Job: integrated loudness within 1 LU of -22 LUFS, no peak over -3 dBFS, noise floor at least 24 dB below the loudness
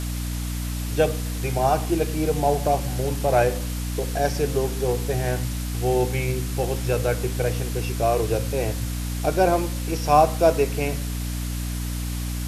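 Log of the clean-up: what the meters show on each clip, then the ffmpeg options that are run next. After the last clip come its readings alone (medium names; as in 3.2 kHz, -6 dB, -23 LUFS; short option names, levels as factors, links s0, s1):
hum 60 Hz; highest harmonic 300 Hz; hum level -25 dBFS; noise floor -28 dBFS; noise floor target -48 dBFS; loudness -24.0 LUFS; peak level -4.0 dBFS; loudness target -22.0 LUFS
-> -af "bandreject=f=60:t=h:w=4,bandreject=f=120:t=h:w=4,bandreject=f=180:t=h:w=4,bandreject=f=240:t=h:w=4,bandreject=f=300:t=h:w=4"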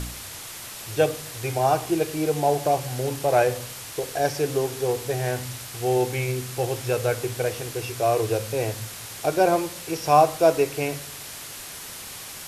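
hum not found; noise floor -38 dBFS; noise floor target -49 dBFS
-> -af "afftdn=nr=11:nf=-38"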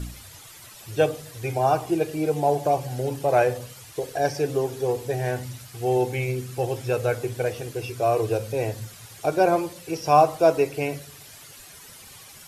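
noise floor -46 dBFS; noise floor target -49 dBFS
-> -af "afftdn=nr=6:nf=-46"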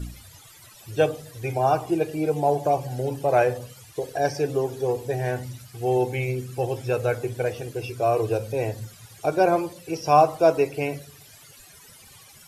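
noise floor -49 dBFS; loudness -24.5 LUFS; peak level -4.5 dBFS; loudness target -22.0 LUFS
-> -af "volume=1.33,alimiter=limit=0.708:level=0:latency=1"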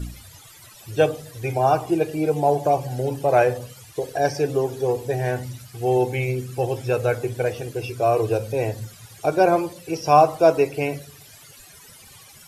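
loudness -22.0 LUFS; peak level -3.0 dBFS; noise floor -47 dBFS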